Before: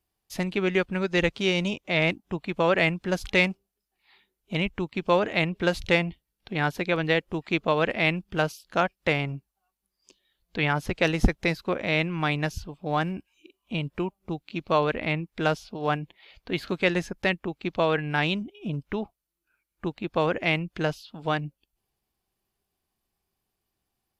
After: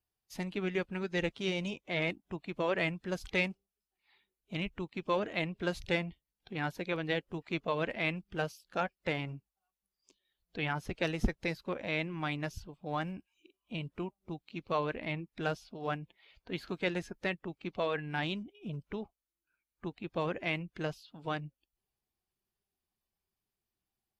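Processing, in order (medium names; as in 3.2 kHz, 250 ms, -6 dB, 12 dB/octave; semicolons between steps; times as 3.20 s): coarse spectral quantiser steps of 15 dB; trim -9 dB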